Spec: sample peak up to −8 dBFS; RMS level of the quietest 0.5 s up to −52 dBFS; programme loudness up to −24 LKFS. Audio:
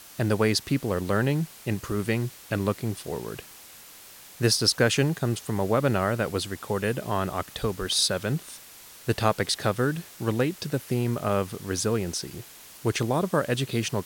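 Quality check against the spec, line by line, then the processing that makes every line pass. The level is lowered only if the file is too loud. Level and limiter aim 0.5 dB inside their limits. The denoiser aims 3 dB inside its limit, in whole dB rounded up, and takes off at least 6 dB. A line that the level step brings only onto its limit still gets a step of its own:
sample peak −6.5 dBFS: out of spec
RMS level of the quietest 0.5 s −48 dBFS: out of spec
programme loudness −26.5 LKFS: in spec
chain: broadband denoise 7 dB, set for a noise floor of −48 dBFS
brickwall limiter −8.5 dBFS

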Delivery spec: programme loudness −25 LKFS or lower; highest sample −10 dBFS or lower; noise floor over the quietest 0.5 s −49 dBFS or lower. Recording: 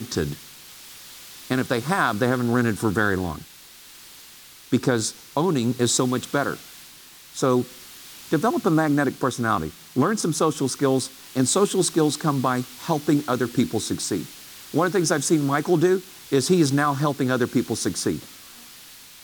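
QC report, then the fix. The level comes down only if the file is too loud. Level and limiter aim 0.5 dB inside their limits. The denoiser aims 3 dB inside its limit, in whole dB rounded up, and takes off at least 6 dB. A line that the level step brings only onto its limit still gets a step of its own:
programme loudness −23.0 LKFS: out of spec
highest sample −7.5 dBFS: out of spec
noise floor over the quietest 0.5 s −46 dBFS: out of spec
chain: broadband denoise 6 dB, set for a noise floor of −46 dBFS
level −2.5 dB
brickwall limiter −10.5 dBFS

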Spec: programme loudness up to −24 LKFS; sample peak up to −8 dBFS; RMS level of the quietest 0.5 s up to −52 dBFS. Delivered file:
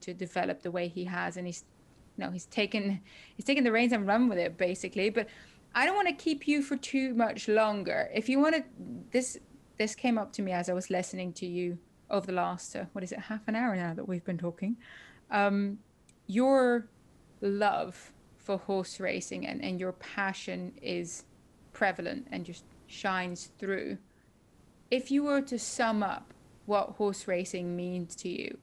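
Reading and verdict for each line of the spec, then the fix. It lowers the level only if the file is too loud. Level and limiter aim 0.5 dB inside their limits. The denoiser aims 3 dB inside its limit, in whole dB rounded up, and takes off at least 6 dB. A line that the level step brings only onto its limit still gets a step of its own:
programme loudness −32.0 LKFS: in spec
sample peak −14.0 dBFS: in spec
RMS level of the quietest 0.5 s −63 dBFS: in spec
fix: no processing needed

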